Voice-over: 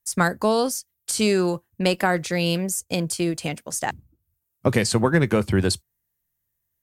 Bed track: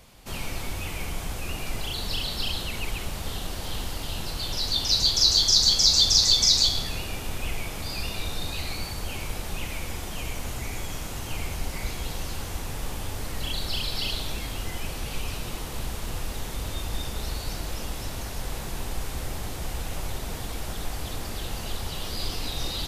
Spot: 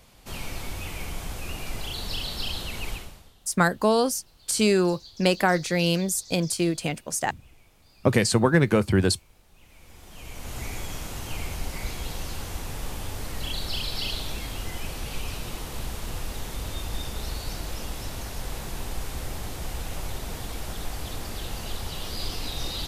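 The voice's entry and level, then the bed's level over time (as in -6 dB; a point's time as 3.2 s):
3.40 s, -0.5 dB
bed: 2.93 s -2 dB
3.35 s -25.5 dB
9.51 s -25.5 dB
10.6 s -1 dB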